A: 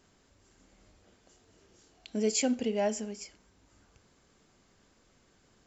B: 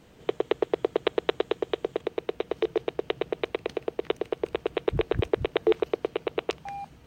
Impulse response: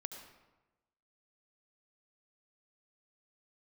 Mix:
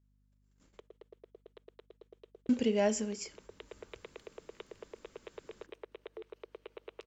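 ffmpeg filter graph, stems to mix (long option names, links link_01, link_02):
-filter_complex "[0:a]volume=2dB,asplit=3[link_01][link_02][link_03];[link_01]atrim=end=0.8,asetpts=PTS-STARTPTS,afade=type=out:start_time=0.796:duration=0.004:curve=hsin[link_04];[link_02]atrim=start=0.8:end=2.49,asetpts=PTS-STARTPTS,volume=0[link_05];[link_03]atrim=start=2.49,asetpts=PTS-STARTPTS,afade=type=in:duration=0.004:curve=hsin[link_06];[link_04][link_05][link_06]concat=n=3:v=0:a=1[link_07];[1:a]highpass=frequency=330:width=0.5412,highpass=frequency=330:width=1.3066,acompressor=threshold=-28dB:ratio=20,adelay=500,volume=-14dB,afade=type=in:start_time=3.31:duration=0.43:silence=0.473151[link_08];[link_07][link_08]amix=inputs=2:normalize=0,equalizer=frequency=730:width=6.8:gain=-11.5,agate=range=-32dB:threshold=-58dB:ratio=16:detection=peak,aeval=exprs='val(0)+0.000316*(sin(2*PI*50*n/s)+sin(2*PI*2*50*n/s)/2+sin(2*PI*3*50*n/s)/3+sin(2*PI*4*50*n/s)/4+sin(2*PI*5*50*n/s)/5)':channel_layout=same"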